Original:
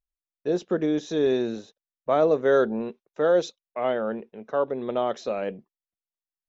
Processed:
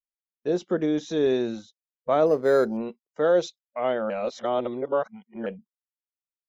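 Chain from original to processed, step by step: spectral noise reduction 26 dB; 2.26–2.77 decimation joined by straight lines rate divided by 8×; 4.1–5.46 reverse

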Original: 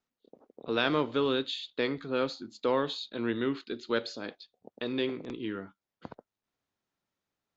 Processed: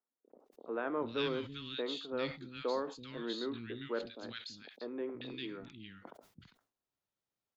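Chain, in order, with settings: three bands offset in time mids, lows, highs 0.33/0.4 s, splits 220/1700 Hz; sustainer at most 140 dB/s; gain -6.5 dB

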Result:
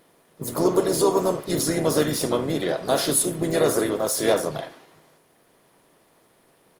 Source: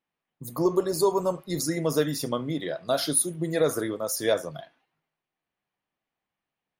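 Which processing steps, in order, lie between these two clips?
per-bin compression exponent 0.6; harmoniser -7 st -17 dB, -4 st -10 dB, +3 st -11 dB; Opus 32 kbps 48000 Hz

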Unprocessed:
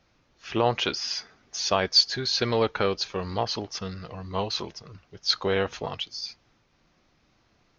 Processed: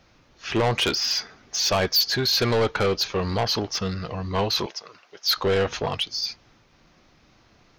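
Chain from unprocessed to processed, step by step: 4.66–5.37 HPF 560 Hz 12 dB/oct; soft clip -24.5 dBFS, distortion -7 dB; gain +8 dB

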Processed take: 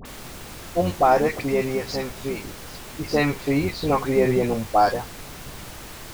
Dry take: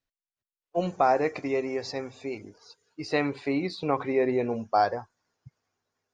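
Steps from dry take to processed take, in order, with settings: octaver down 1 oct, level -4 dB; added noise pink -43 dBFS; dispersion highs, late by 53 ms, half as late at 1300 Hz; gain +5 dB

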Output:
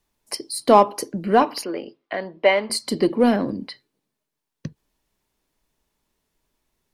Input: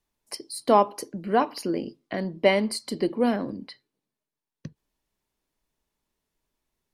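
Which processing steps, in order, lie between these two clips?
in parallel at -10.5 dB: hard clip -22.5 dBFS, distortion -5 dB; 1.64–2.7 on the sum: three-band isolator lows -17 dB, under 440 Hz, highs -19 dB, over 3700 Hz; gain +4.5 dB

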